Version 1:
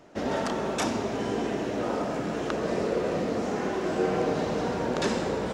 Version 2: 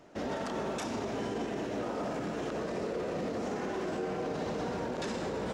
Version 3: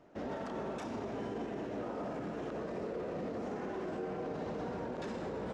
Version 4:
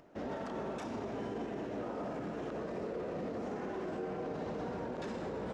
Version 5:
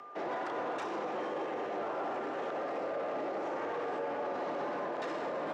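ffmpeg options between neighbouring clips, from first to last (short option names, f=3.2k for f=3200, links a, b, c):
-af "alimiter=limit=-24dB:level=0:latency=1:release=34,volume=-3dB"
-af "highshelf=f=3.1k:g=-11,volume=-4dB"
-af "acompressor=mode=upward:threshold=-59dB:ratio=2.5"
-filter_complex "[0:a]aeval=exprs='val(0)+0.00178*sin(2*PI*1100*n/s)':c=same,asplit=2[a][b];[b]highpass=f=720:p=1,volume=12dB,asoftclip=type=tanh:threshold=-30.5dB[c];[a][c]amix=inputs=2:normalize=0,lowpass=f=2.4k:p=1,volume=-6dB,afreqshift=100,volume=2.5dB"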